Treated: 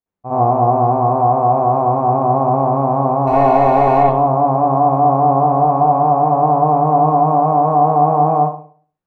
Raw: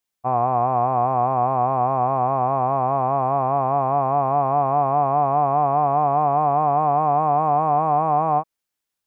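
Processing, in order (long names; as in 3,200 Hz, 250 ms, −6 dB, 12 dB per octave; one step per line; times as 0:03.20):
0:03.27–0:04.03: mid-hump overdrive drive 37 dB, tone 2,100 Hz, clips at −10.5 dBFS
tilt shelving filter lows +9.5 dB, about 1,200 Hz
convolution reverb, pre-delay 58 ms, DRR −9.5 dB
level −9.5 dB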